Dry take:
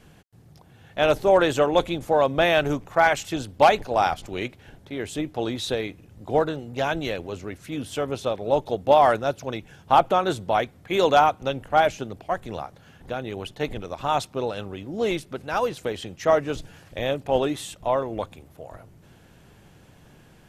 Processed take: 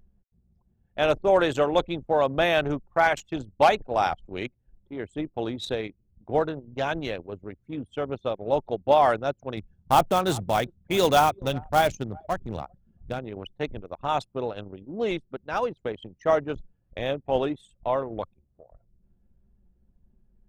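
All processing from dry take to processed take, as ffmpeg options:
ffmpeg -i in.wav -filter_complex "[0:a]asettb=1/sr,asplit=3[link_01][link_02][link_03];[link_01]atrim=end=9.574[link_04];[link_02]atrim=start=9.57:end=13.19,asetpts=PTS-STARTPTS,afade=type=in:duration=0.004:curve=qsin,afade=type=out:start_time=3.616:duration=0.004:curve=qsin,bass=frequency=250:gain=7,treble=frequency=4000:gain=9,acrusher=bits=4:mode=log:mix=0:aa=0.000001,aecho=1:1:391:0.0891,atrim=end_sample=159642[link_05];[link_03]atrim=start=13.186[link_06];[link_04][link_05]acrossfade=duration=0.004:curve1=hsin:curve2=qsin[link_07];[link_07][link_06]acrossfade=duration=0.004:curve1=qsin:curve2=hsin,acompressor=mode=upward:threshold=-38dB:ratio=2.5,anlmdn=39.8,volume=-2.5dB" out.wav

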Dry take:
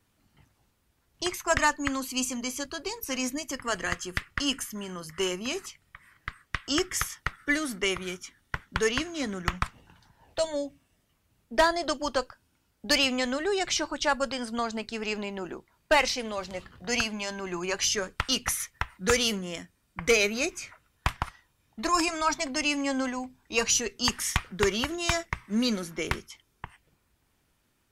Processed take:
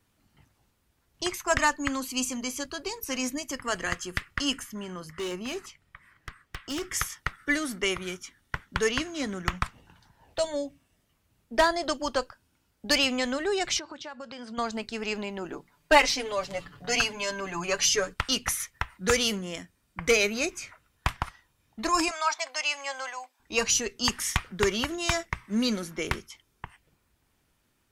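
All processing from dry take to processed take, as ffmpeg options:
ffmpeg -i in.wav -filter_complex "[0:a]asettb=1/sr,asplit=3[link_01][link_02][link_03];[link_01]atrim=end=4.604[link_04];[link_02]atrim=start=4.6:end=6.83,asetpts=PTS-STARTPTS,afade=type=in:duration=0.004:curve=qsin,afade=type=out:start_time=2.226:duration=0.004:curve=qsin,highshelf=frequency=4700:gain=-7.5,asoftclip=type=hard:threshold=-29.5dB[link_05];[link_03]atrim=start=6.826[link_06];[link_04][link_05]acrossfade=duration=0.004:curve1=hsin:curve2=qsin[link_07];[link_07][link_06]acrossfade=duration=0.004:curve1=qsin:curve2=hsin,asettb=1/sr,asplit=3[link_08][link_09][link_10];[link_08]atrim=end=13.794[link_11];[link_09]atrim=start=13.79:end=14.58,asetpts=PTS-STARTPTS,afade=type=in:duration=0.004:curve=qsin,afade=type=out:start_time=0.786:duration=0.004:curve=qsin,acompressor=threshold=-36dB:ratio=10:attack=3.2:release=140:knee=1:detection=peak,highpass=100,lowpass=5400[link_12];[link_10]atrim=start=14.576[link_13];[link_11][link_12]acrossfade=duration=0.004:curve1=hsin:curve2=qsin[link_14];[link_14][link_13]acrossfade=duration=0.004:curve1=qsin:curve2=hsin,asettb=1/sr,asplit=3[link_15][link_16][link_17];[link_15]atrim=end=15.524[link_18];[link_16]atrim=start=15.52:end=18.14,asetpts=PTS-STARTPTS,afade=type=in:duration=0.004:curve=qsin,afade=type=out:start_time=2.616:duration=0.004:curve=qsin,bandreject=frequency=60:width_type=h:width=6,bandreject=frequency=120:width_type=h:width=6,bandreject=frequency=180:width_type=h:width=6,bandreject=frequency=240:width_type=h:width=6,aecho=1:1:6.9:0.93,atrim=end_sample=115542[link_19];[link_17]atrim=start=18.136[link_20];[link_18][link_19]acrossfade=duration=0.004:curve1=hsin:curve2=qsin[link_21];[link_21][link_20]acrossfade=duration=0.004:curve1=qsin:curve2=hsin,asettb=1/sr,asplit=3[link_22][link_23][link_24];[link_22]atrim=end=22.114[link_25];[link_23]atrim=start=22.11:end=23.4,asetpts=PTS-STARTPTS,afade=type=in:duration=0.004:curve=qsin,afade=type=out:start_time=1.286:duration=0.004:curve=qsin,highpass=frequency=640:width=0.5412,highpass=frequency=640:width=1.3066,acrossover=split=8200[link_26][link_27];[link_27]acompressor=threshold=-58dB:ratio=4:attack=1:release=60[link_28];[link_26][link_28]amix=inputs=2:normalize=0[link_29];[link_24]atrim=start=23.396[link_30];[link_25][link_29]acrossfade=duration=0.004:curve1=hsin:curve2=qsin[link_31];[link_31][link_30]acrossfade=duration=0.004:curve1=qsin:curve2=hsin" out.wav

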